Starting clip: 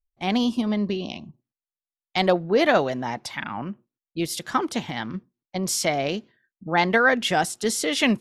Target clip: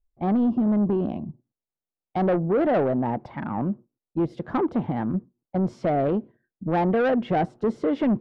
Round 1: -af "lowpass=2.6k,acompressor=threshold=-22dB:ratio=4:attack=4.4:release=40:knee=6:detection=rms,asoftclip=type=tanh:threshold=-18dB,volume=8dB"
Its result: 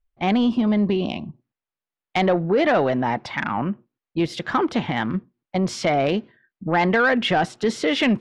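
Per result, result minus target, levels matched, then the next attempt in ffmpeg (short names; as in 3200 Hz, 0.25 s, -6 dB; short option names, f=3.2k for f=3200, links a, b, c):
2000 Hz band +10.0 dB; soft clip: distortion -7 dB
-af "lowpass=670,acompressor=threshold=-22dB:ratio=4:attack=4.4:release=40:knee=6:detection=rms,asoftclip=type=tanh:threshold=-18dB,volume=8dB"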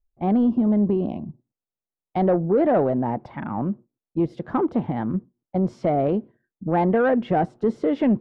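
soft clip: distortion -9 dB
-af "lowpass=670,acompressor=threshold=-22dB:ratio=4:attack=4.4:release=40:knee=6:detection=rms,asoftclip=type=tanh:threshold=-24.5dB,volume=8dB"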